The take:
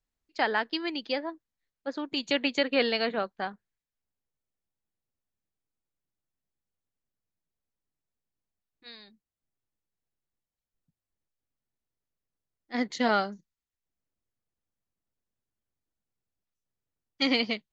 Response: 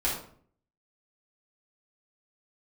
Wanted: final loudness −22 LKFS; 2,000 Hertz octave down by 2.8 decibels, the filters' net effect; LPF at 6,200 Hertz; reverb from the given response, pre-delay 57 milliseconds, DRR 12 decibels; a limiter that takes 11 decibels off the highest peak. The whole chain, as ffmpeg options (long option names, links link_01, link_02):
-filter_complex "[0:a]lowpass=6200,equalizer=frequency=2000:width_type=o:gain=-3.5,alimiter=limit=-24dB:level=0:latency=1,asplit=2[link_01][link_02];[1:a]atrim=start_sample=2205,adelay=57[link_03];[link_02][link_03]afir=irnorm=-1:irlink=0,volume=-21dB[link_04];[link_01][link_04]amix=inputs=2:normalize=0,volume=13.5dB"